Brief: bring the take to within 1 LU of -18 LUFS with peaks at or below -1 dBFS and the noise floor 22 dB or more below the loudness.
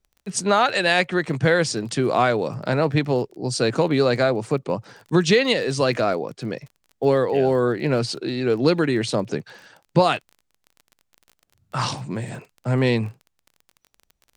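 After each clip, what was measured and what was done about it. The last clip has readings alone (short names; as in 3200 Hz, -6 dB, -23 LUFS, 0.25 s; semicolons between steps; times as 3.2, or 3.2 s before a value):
ticks 26/s; loudness -22.0 LUFS; peak -3.0 dBFS; loudness target -18.0 LUFS
-> de-click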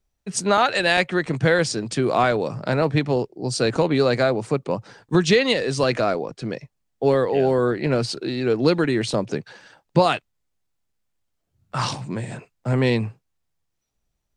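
ticks 0/s; loudness -21.5 LUFS; peak -3.0 dBFS; loudness target -18.0 LUFS
-> gain +3.5 dB; limiter -1 dBFS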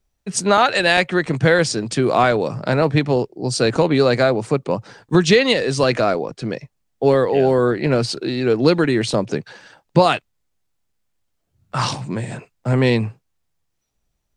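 loudness -18.0 LUFS; peak -1.0 dBFS; noise floor -72 dBFS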